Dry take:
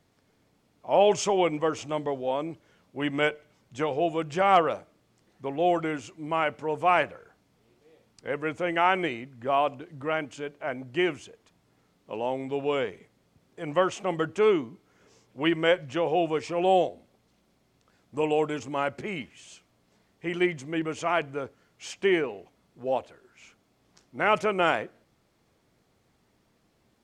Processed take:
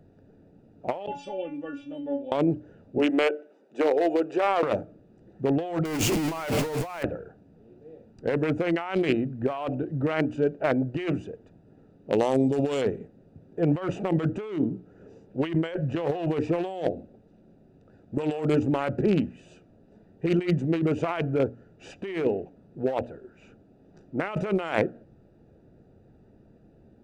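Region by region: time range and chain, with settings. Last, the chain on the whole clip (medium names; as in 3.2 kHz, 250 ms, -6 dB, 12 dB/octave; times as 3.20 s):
1.06–2.32 s: peaking EQ 3.5 kHz +12 dB 1.3 oct + inharmonic resonator 280 Hz, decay 0.32 s, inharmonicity 0.002
2.98–4.63 s: high-pass 320 Hz 24 dB/octave + compression 3:1, threshold -28 dBFS
5.85–7.03 s: jump at every zero crossing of -23 dBFS + tape noise reduction on one side only encoder only
12.12–12.82 s: Butterworth band-stop 1.6 kHz, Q 3.1 + resonant high shelf 3.6 kHz +13 dB, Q 1.5
whole clip: local Wiener filter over 41 samples; hum notches 60/120/180/240/300 Hz; compressor with a negative ratio -35 dBFS, ratio -1; trim +8.5 dB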